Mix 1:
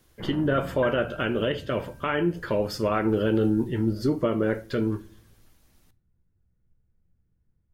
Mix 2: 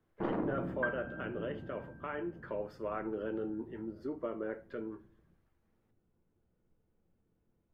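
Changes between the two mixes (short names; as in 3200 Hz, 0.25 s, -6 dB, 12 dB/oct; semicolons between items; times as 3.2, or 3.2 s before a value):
speech -12.0 dB; first sound: remove ladder low-pass 2200 Hz, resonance 45%; master: add three-band isolator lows -19 dB, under 250 Hz, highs -19 dB, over 2200 Hz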